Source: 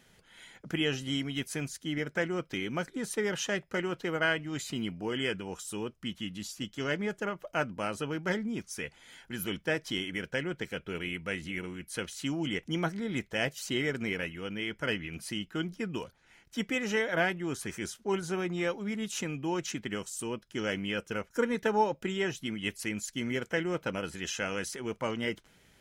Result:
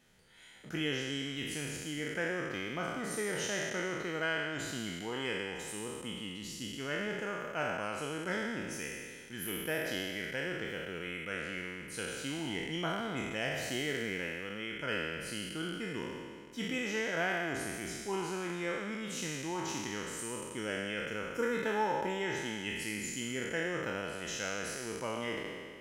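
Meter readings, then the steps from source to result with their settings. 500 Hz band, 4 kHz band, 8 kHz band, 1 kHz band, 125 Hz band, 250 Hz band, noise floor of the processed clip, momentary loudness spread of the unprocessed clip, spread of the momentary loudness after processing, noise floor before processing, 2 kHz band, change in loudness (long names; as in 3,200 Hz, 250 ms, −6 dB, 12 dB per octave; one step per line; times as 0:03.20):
−3.5 dB, −2.0 dB, −0.5 dB, −2.0 dB, −5.0 dB, −5.0 dB, −47 dBFS, 8 LU, 6 LU, −64 dBFS, −1.5 dB, −3.0 dB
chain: peak hold with a decay on every bin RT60 1.95 s
level −7.5 dB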